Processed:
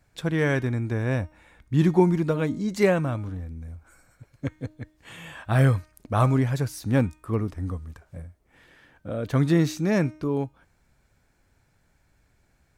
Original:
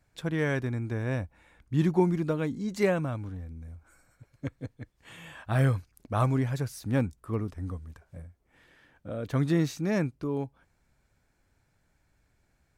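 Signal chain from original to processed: de-hum 309 Hz, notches 31; trim +5 dB

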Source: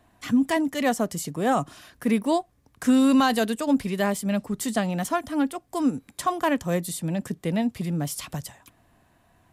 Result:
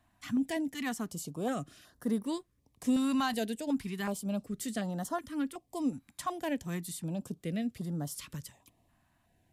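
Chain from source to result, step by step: step-sequenced notch 2.7 Hz 450–2400 Hz; trim -8.5 dB

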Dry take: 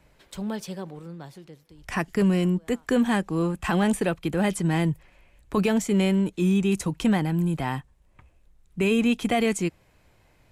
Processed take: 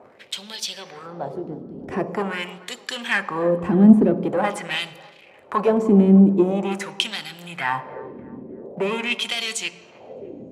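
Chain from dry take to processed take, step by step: treble shelf 7 kHz +10.5 dB; in parallel at +0.5 dB: compression, threshold -33 dBFS, peak gain reduction 14.5 dB; on the sum: waveshaping leveller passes 2; band noise 41–560 Hz -38 dBFS; wah-wah 0.45 Hz 250–3900 Hz, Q 2.4; feedback echo behind a band-pass 303 ms, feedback 35%, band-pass 790 Hz, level -17.5 dB; Chebyshev shaper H 3 -20 dB, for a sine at -11 dBFS; on a send at -10 dB: reverberation RT60 1.0 s, pre-delay 3 ms; on the sum: trim +7.5 dB

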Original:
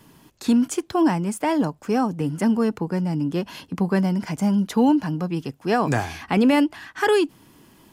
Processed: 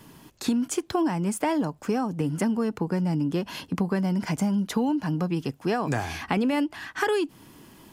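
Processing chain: compression, threshold -24 dBFS, peak gain reduction 10.5 dB; trim +2 dB

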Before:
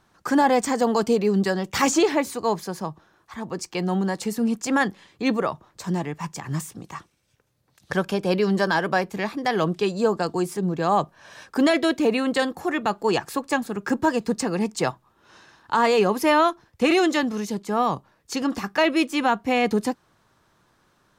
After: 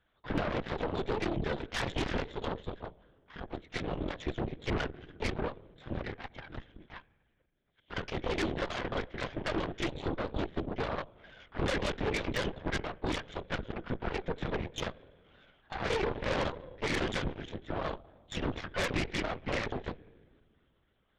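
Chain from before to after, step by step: sawtooth pitch modulation -4.5 st, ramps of 274 ms; peak limiter -17 dBFS, peak gain reduction 8 dB; high-pass 300 Hz 12 dB/octave; peaking EQ 870 Hz -12 dB 0.74 oct; band-stop 400 Hz, Q 12; comb of notches 1.3 kHz; reverberation RT60 1.7 s, pre-delay 3 ms, DRR 16.5 dB; LPC vocoder at 8 kHz whisper; Chebyshev shaper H 8 -12 dB, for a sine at -16.5 dBFS; trim -4 dB

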